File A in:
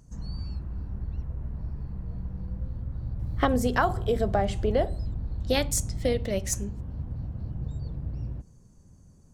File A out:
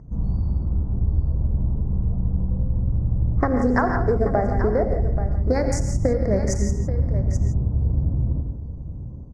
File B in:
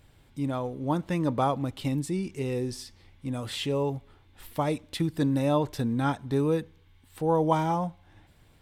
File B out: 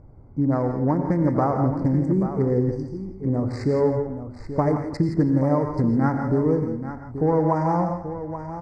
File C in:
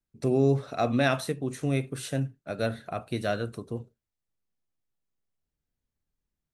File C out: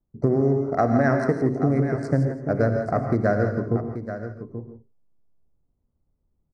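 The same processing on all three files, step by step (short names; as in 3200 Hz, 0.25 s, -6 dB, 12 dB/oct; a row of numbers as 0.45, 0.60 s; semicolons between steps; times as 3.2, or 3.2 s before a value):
Wiener smoothing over 25 samples; Chebyshev band-stop 2000–4900 Hz, order 3; compressor 10:1, threshold -28 dBFS; air absorption 120 m; tapped delay 88/112/173/832 ms -17.5/-18/-10.5/-11 dB; non-linear reverb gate 0.18 s rising, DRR 6.5 dB; match loudness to -23 LUFS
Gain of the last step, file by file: +12.0, +11.0, +12.0 dB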